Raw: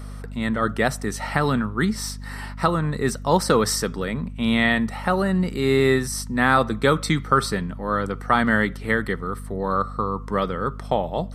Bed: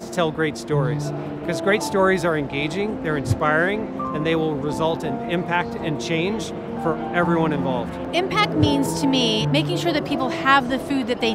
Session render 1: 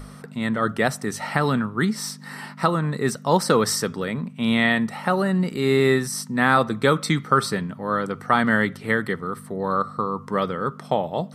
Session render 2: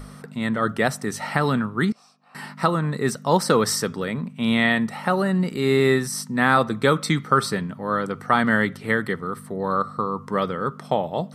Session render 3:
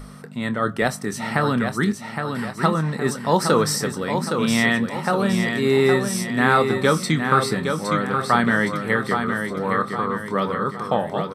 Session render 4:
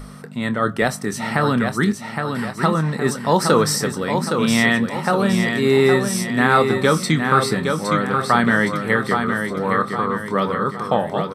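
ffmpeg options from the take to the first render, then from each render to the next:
-af "bandreject=f=50:t=h:w=6,bandreject=f=100:t=h:w=6"
-filter_complex "[0:a]asettb=1/sr,asplit=3[a][b][c];[a]atrim=end=1.924[d];[b]atrim=start=1.92:end=2.35,asetpts=PTS-STARTPTS,afade=t=in:d=0.004:c=qsin,afade=t=out:st=0.426:d=0.004:c=qsin,asplit=3[e][f][g];[e]bandpass=f=730:t=q:w=8,volume=0dB[h];[f]bandpass=f=1.09k:t=q:w=8,volume=-6dB[i];[g]bandpass=f=2.44k:t=q:w=8,volume=-9dB[j];[h][i][j]amix=inputs=3:normalize=0[k];[c]atrim=start=2.346[l];[d][k]acrossfade=d=0.004:c1=hsin:c2=qsin[m];[m][l]acrossfade=d=0.004:c1=qsin:c2=hsin"
-filter_complex "[0:a]asplit=2[a][b];[b]adelay=25,volume=-12dB[c];[a][c]amix=inputs=2:normalize=0,asplit=2[d][e];[e]aecho=0:1:815|1630|2445|3260|4075:0.501|0.226|0.101|0.0457|0.0206[f];[d][f]amix=inputs=2:normalize=0"
-af "volume=2.5dB,alimiter=limit=-3dB:level=0:latency=1"

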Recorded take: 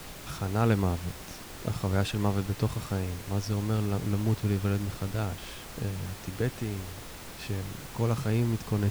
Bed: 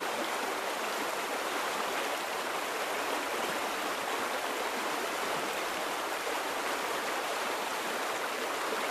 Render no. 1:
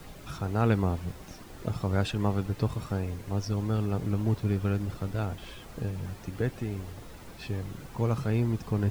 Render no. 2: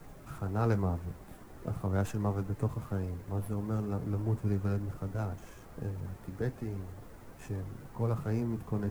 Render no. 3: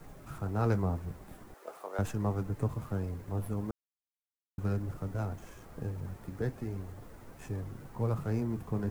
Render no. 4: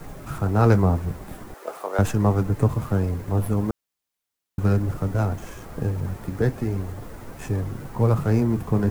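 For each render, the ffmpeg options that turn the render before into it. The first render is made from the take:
-af "afftdn=nr=9:nf=-44"
-filter_complex "[0:a]flanger=delay=6.5:depth=8.6:regen=-58:speed=0.4:shape=triangular,acrossover=split=150|430|2200[a][b][c][d];[d]aeval=exprs='abs(val(0))':c=same[e];[a][b][c][e]amix=inputs=4:normalize=0"
-filter_complex "[0:a]asettb=1/sr,asplit=3[a][b][c];[a]atrim=end=1.544[d];[b]atrim=start=1.54:end=1.99,asetpts=PTS-STARTPTS,afade=t=in:d=0.004:c=qsin,afade=t=out:st=0.446:d=0.004:c=qsin,highpass=f=450:w=0.5412,highpass=f=450:w=1.3066[e];[c]atrim=start=1.986[f];[d][e]acrossfade=d=0.004:c1=hsin:c2=qsin[g];[g][f]acrossfade=d=0.004:c1=qsin:c2=hsin,asplit=3[h][i][j];[h]atrim=end=3.71,asetpts=PTS-STARTPTS,afade=t=out:st=3.706:d=0.004:c=hsin[k];[i]atrim=start=3.71:end=4.58,asetpts=PTS-STARTPTS,volume=0[l];[j]atrim=start=4.58,asetpts=PTS-STARTPTS,afade=t=in:d=0.004:c=hsin[m];[k][l][m]concat=n=3:v=0:a=1"
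-af "volume=12dB"

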